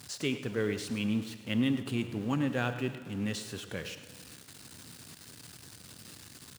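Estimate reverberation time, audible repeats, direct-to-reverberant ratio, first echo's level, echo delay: 1.8 s, 1, 9.0 dB, -14.0 dB, 106 ms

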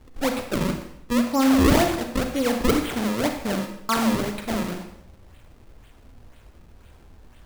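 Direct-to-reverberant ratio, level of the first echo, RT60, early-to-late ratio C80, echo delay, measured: 5.0 dB, no echo, 0.80 s, 9.5 dB, no echo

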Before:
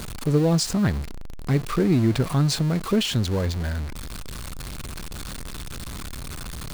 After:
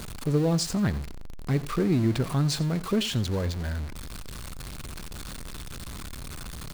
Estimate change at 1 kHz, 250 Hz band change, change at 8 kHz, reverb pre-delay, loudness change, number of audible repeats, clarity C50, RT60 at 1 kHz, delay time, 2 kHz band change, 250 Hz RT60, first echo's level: -4.0 dB, -4.0 dB, -4.0 dB, no reverb, -4.0 dB, 1, no reverb, no reverb, 88 ms, -4.0 dB, no reverb, -18.0 dB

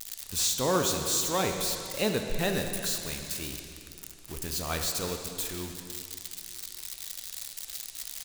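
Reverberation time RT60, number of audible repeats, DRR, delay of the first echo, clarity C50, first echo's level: 2.5 s, 1, 4.0 dB, 359 ms, 5.0 dB, -20.5 dB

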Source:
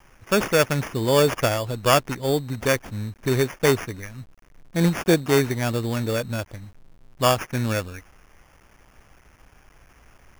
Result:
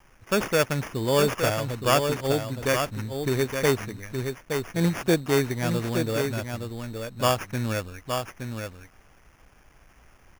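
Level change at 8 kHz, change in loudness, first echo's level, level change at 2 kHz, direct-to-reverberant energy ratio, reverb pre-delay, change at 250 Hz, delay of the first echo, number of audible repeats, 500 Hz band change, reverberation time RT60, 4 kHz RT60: -2.5 dB, -3.5 dB, -6.0 dB, -2.5 dB, no reverb, no reverb, -2.5 dB, 869 ms, 1, -2.5 dB, no reverb, no reverb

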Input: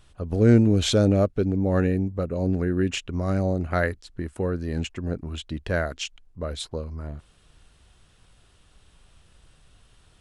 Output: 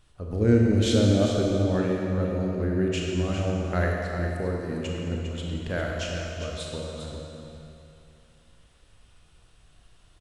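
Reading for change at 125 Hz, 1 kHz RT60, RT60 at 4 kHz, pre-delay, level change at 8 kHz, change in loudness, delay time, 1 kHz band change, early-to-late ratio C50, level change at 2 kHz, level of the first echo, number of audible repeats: -1.5 dB, 2.6 s, 2.4 s, 27 ms, -1.5 dB, -1.5 dB, 403 ms, -1.5 dB, -1.0 dB, -1.5 dB, -8.5 dB, 1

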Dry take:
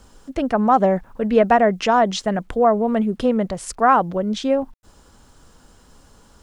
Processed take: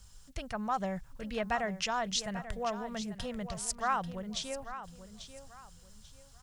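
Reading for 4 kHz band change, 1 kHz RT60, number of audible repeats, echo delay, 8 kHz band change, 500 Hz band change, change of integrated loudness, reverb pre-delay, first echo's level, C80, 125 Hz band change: -5.5 dB, no reverb, 3, 840 ms, -2.5 dB, -20.0 dB, -16.5 dB, no reverb, -12.0 dB, no reverb, -14.0 dB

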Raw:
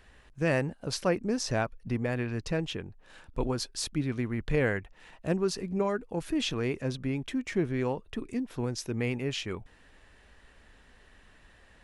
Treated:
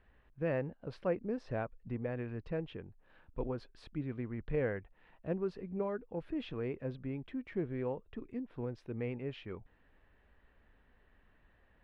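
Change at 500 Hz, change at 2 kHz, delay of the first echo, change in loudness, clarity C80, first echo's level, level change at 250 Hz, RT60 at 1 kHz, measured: -6.0 dB, -12.0 dB, no echo, -8.0 dB, no reverb, no echo, -8.0 dB, no reverb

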